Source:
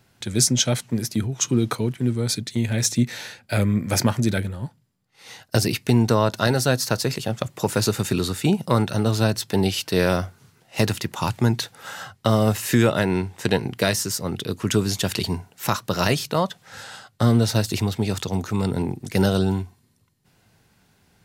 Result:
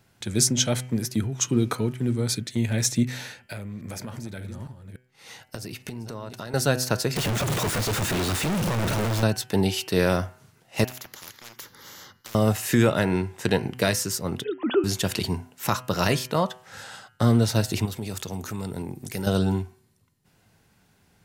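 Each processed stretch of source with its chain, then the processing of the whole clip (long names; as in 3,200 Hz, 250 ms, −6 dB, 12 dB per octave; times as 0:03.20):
0:03.24–0:06.54: delay that plays each chunk backwards 287 ms, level −13 dB + downward compressor 8 to 1, threshold −30 dBFS
0:07.16–0:09.23: sign of each sample alone + high-shelf EQ 5,600 Hz −7 dB
0:10.84–0:12.35: phaser with its sweep stopped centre 2,600 Hz, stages 6 + hard clipping −17.5 dBFS + every bin compressed towards the loudest bin 10 to 1
0:14.44–0:14.84: three sine waves on the formant tracks + notch filter 2,200 Hz, Q 11
0:17.85–0:19.27: high-shelf EQ 7,400 Hz +11 dB + downward compressor 2.5 to 1, threshold −29 dBFS
whole clip: parametric band 4,200 Hz −2 dB; hum removal 126.2 Hz, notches 25; level −1.5 dB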